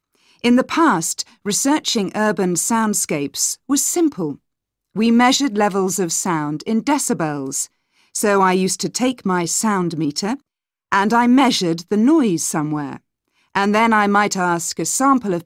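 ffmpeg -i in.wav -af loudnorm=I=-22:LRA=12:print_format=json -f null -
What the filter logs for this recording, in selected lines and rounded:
"input_i" : "-17.8",
"input_tp" : "-2.1",
"input_lra" : "1.6",
"input_thresh" : "-28.1",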